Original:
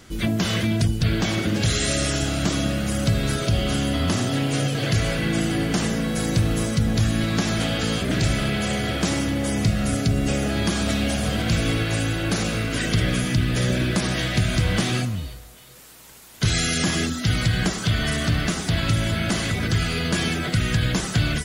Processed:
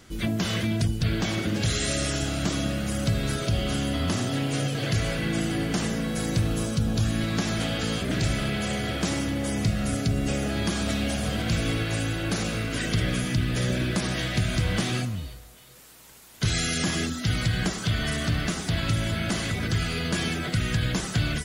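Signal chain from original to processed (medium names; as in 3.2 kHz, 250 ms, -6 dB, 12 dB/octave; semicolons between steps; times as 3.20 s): 6.47–7.05 s: peaking EQ 2 kHz -5.5 dB -> -14 dB 0.22 oct; trim -4 dB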